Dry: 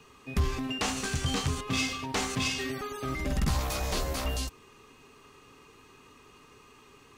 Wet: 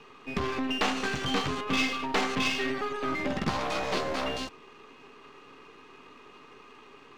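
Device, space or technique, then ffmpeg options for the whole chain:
crystal radio: -af "highpass=220,lowpass=3300,aeval=exprs='if(lt(val(0),0),0.447*val(0),val(0))':c=same,volume=2.37"

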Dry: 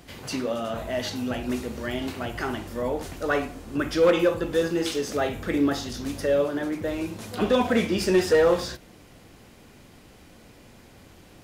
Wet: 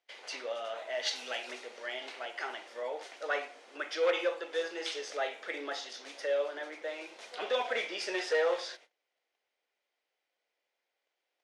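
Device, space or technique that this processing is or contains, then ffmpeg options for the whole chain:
phone speaker on a table: -filter_complex "[0:a]agate=range=0.0631:threshold=0.00562:ratio=16:detection=peak,asplit=3[s0][s1][s2];[s0]afade=t=out:st=1.05:d=0.02[s3];[s1]highshelf=f=2200:g=10,afade=t=in:st=1.05:d=0.02,afade=t=out:st=1.5:d=0.02[s4];[s2]afade=t=in:st=1.5:d=0.02[s5];[s3][s4][s5]amix=inputs=3:normalize=0,highpass=f=500:w=0.5412,highpass=f=500:w=1.3066,equalizer=f=1100:t=q:w=4:g=-4,equalizer=f=2100:t=q:w=4:g=5,equalizer=f=3300:t=q:w=4:g=3,equalizer=f=7400:t=q:w=4:g=-6,lowpass=f=7900:w=0.5412,lowpass=f=7900:w=1.3066,volume=0.473"

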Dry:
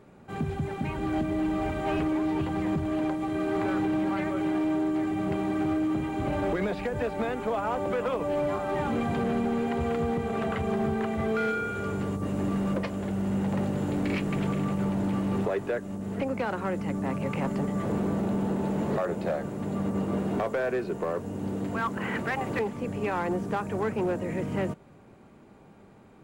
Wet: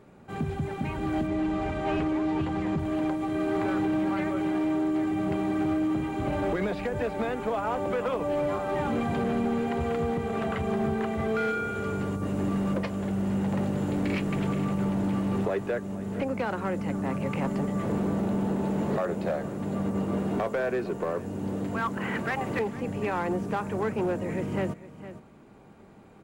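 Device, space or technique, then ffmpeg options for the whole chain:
ducked delay: -filter_complex "[0:a]asplit=3[s0][s1][s2];[s1]adelay=460,volume=0.596[s3];[s2]apad=whole_len=1177445[s4];[s3][s4]sidechaincompress=threshold=0.0126:ratio=10:attack=16:release=1420[s5];[s0][s5]amix=inputs=2:normalize=0,asettb=1/sr,asplit=3[s6][s7][s8];[s6]atrim=end=1.274[s9];[s7]atrim=start=1.27:end=2.79,asetpts=PTS-STARTPTS,afade=t=in:d=0.004:c=qsin,afade=t=out:st=1.516:d=0.004:c=qsin,lowpass=7600[s10];[s8]atrim=start=2.786[s11];[s9][s10]acrossfade=d=0.004:c1=hsin:c2=qsin[s12];[s12][s11]acrossfade=d=0.004:c1=qsin:c2=hsin"

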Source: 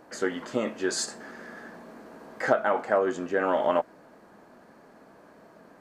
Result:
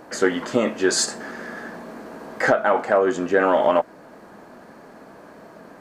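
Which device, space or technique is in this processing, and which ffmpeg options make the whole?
soft clipper into limiter: -af "asoftclip=type=tanh:threshold=0.335,alimiter=limit=0.168:level=0:latency=1:release=414,volume=2.82"

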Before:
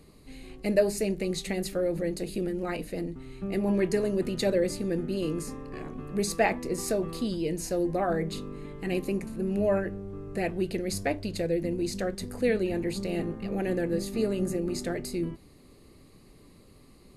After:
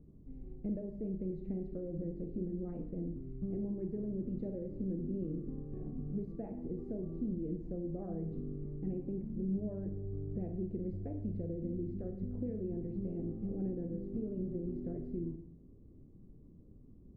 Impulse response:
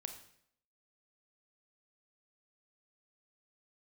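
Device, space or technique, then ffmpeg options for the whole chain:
television next door: -filter_complex "[0:a]acompressor=threshold=0.0316:ratio=4,lowpass=260[s0];[1:a]atrim=start_sample=2205[s1];[s0][s1]afir=irnorm=-1:irlink=0,volume=1.41"

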